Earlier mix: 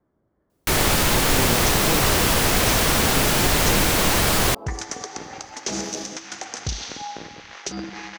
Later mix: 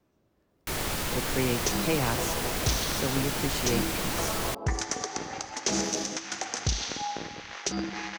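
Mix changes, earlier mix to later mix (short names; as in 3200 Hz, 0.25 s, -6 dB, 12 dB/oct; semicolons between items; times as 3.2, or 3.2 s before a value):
speech: remove polynomial smoothing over 41 samples; first sound -12.0 dB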